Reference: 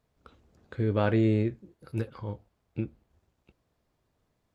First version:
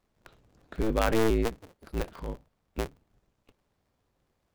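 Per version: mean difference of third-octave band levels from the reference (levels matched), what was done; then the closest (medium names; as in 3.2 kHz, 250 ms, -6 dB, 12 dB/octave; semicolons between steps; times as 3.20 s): 10.0 dB: cycle switcher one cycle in 2, inverted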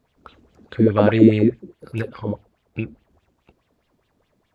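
3.0 dB: sweeping bell 4.8 Hz 210–3300 Hz +15 dB; trim +5 dB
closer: second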